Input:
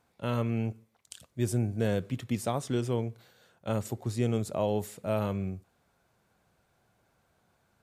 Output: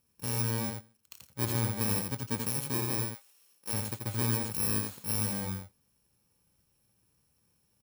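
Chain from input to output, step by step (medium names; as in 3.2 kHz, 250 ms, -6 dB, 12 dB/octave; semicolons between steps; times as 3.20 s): bit-reversed sample order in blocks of 64 samples; 3.05–3.72 s: high-pass 1.1 kHz -> 300 Hz 12 dB/octave; delay 85 ms -4.5 dB; trim -3 dB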